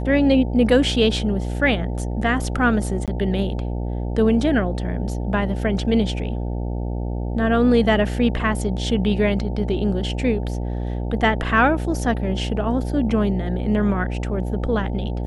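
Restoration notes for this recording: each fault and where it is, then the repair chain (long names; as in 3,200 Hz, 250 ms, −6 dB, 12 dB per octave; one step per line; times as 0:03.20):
mains buzz 60 Hz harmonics 15 −25 dBFS
0:03.06–0:03.08: drop-out 17 ms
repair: hum removal 60 Hz, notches 15
repair the gap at 0:03.06, 17 ms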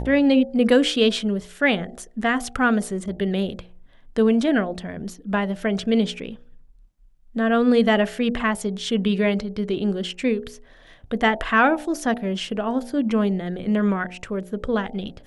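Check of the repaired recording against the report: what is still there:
none of them is left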